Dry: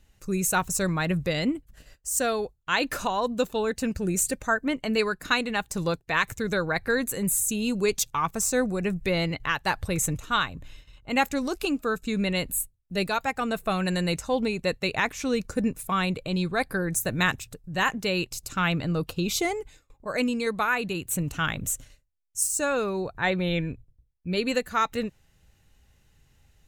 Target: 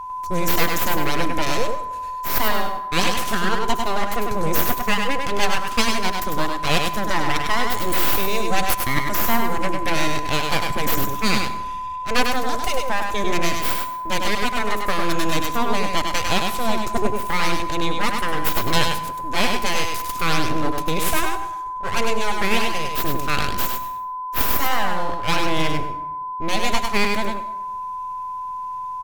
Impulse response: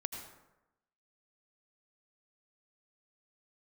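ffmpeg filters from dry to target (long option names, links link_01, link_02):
-filter_complex "[0:a]aeval=exprs='abs(val(0))':channel_layout=same,aeval=exprs='val(0)+0.0158*sin(2*PI*1100*n/s)':channel_layout=same,asetrate=40517,aresample=44100,aecho=1:1:100:0.596,asplit=2[link_01][link_02];[1:a]atrim=start_sample=2205,highshelf=frequency=8600:gain=8.5[link_03];[link_02][link_03]afir=irnorm=-1:irlink=0,volume=-4dB[link_04];[link_01][link_04]amix=inputs=2:normalize=0,volume=2.5dB"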